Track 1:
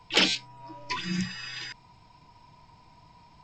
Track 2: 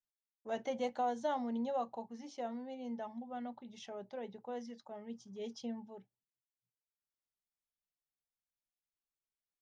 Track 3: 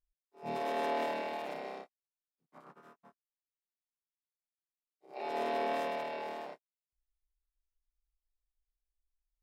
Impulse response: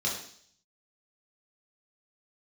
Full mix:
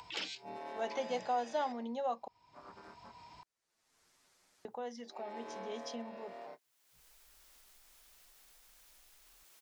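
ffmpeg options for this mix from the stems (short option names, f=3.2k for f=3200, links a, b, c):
-filter_complex "[0:a]highpass=54,equalizer=f=170:w=0.83:g=-6.5,volume=-18.5dB[a];[1:a]lowshelf=f=240:g=-10.5,adelay=300,volume=2.5dB,asplit=3[b][c][d];[b]atrim=end=2.28,asetpts=PTS-STARTPTS,afade=t=out:st=2.276:d=0.004:c=hsin[e];[c]atrim=start=2.28:end=4.65,asetpts=PTS-STARTPTS,volume=0[f];[d]atrim=start=4.65,asetpts=PTS-STARTPTS,afade=t=in:d=0.004:c=hsin[g];[e][f][g]concat=n=3:v=0:a=1[h];[2:a]lowpass=7.2k,equalizer=f=3k:w=1.5:g=-5,asplit=2[i][j];[j]adelay=8.1,afreqshift=0.45[k];[i][k]amix=inputs=2:normalize=1,volume=-10dB[l];[a][h][l]amix=inputs=3:normalize=0,acompressor=mode=upward:threshold=-37dB:ratio=2.5,lowshelf=f=200:g=-5"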